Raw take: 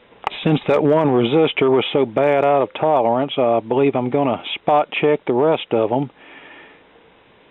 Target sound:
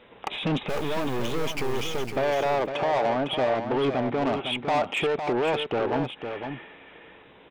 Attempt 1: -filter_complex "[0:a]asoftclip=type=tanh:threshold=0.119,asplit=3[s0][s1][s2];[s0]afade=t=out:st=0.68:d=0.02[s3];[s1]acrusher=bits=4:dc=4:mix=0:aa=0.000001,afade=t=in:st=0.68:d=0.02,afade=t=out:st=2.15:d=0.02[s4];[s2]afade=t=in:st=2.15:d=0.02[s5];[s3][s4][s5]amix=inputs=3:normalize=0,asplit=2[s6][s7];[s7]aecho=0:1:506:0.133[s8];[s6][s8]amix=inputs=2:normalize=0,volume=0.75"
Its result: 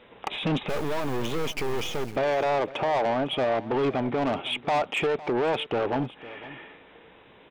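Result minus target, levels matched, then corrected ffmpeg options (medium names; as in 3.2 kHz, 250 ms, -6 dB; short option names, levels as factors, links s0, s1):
echo-to-direct -10 dB
-filter_complex "[0:a]asoftclip=type=tanh:threshold=0.119,asplit=3[s0][s1][s2];[s0]afade=t=out:st=0.68:d=0.02[s3];[s1]acrusher=bits=4:dc=4:mix=0:aa=0.000001,afade=t=in:st=0.68:d=0.02,afade=t=out:st=2.15:d=0.02[s4];[s2]afade=t=in:st=2.15:d=0.02[s5];[s3][s4][s5]amix=inputs=3:normalize=0,asplit=2[s6][s7];[s7]aecho=0:1:506:0.422[s8];[s6][s8]amix=inputs=2:normalize=0,volume=0.75"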